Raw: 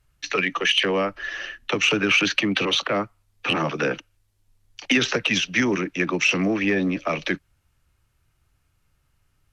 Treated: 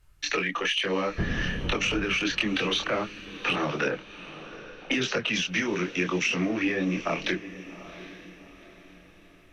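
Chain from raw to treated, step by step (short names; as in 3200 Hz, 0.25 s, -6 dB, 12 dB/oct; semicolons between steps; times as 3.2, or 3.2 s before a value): 1.18–2.02 wind noise 200 Hz -21 dBFS; 3.88–5.33 low-pass opened by the level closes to 490 Hz, open at -16.5 dBFS; compressor, threshold -27 dBFS, peak gain reduction 11.5 dB; chorus voices 6, 0.86 Hz, delay 25 ms, depth 3.4 ms; on a send: diffused feedback echo 0.785 s, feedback 42%, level -15 dB; on the sum: gain +6 dB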